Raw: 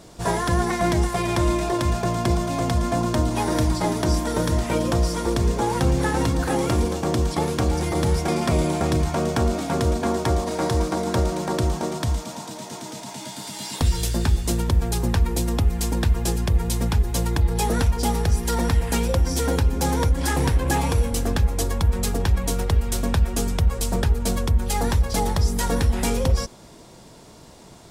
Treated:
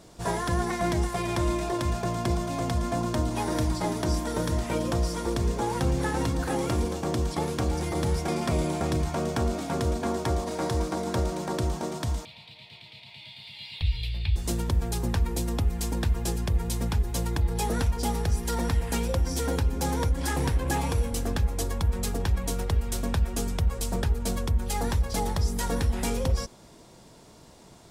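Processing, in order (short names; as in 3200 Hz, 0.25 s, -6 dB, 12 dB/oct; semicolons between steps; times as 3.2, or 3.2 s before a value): 12.25–14.36 EQ curve 110 Hz 0 dB, 290 Hz -26 dB, 410 Hz -17 dB, 860 Hz -15 dB, 1500 Hz -18 dB, 2300 Hz +6 dB, 4300 Hz +1 dB, 6200 Hz -29 dB, 12000 Hz -20 dB; gain -5.5 dB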